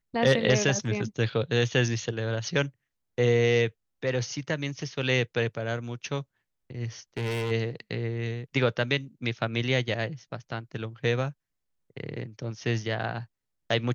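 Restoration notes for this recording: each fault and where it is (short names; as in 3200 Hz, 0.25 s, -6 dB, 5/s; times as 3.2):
7.17–7.52 clipped -27 dBFS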